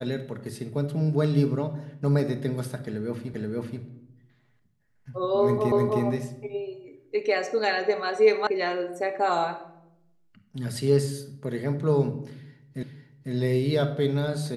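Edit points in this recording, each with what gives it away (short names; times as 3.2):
3.34 repeat of the last 0.48 s
5.72 repeat of the last 0.31 s
8.47 sound cut off
12.83 repeat of the last 0.5 s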